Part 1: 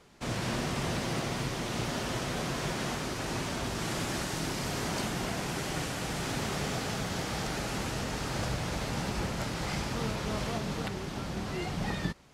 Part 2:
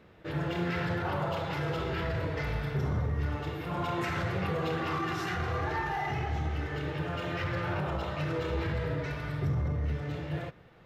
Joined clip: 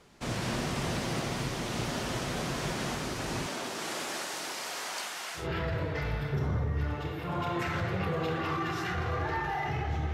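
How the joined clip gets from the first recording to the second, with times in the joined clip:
part 1
0:03.46–0:05.48: high-pass filter 250 Hz → 1,200 Hz
0:05.41: continue with part 2 from 0:01.83, crossfade 0.14 s

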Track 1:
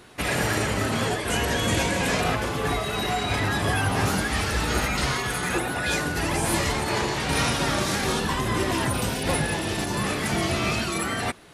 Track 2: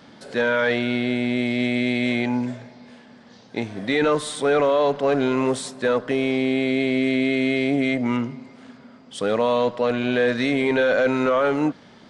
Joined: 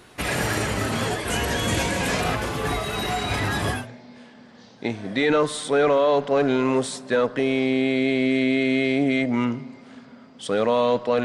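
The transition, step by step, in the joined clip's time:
track 1
0:03.77: continue with track 2 from 0:02.49, crossfade 0.20 s

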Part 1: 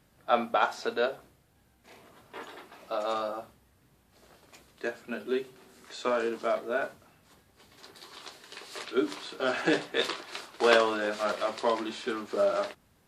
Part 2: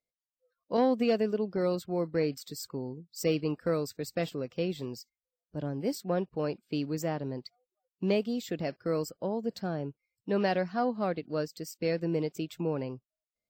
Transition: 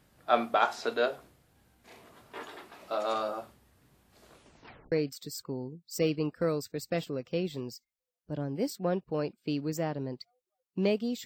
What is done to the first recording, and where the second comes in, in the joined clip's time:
part 1
0:04.26: tape stop 0.66 s
0:04.92: continue with part 2 from 0:02.17

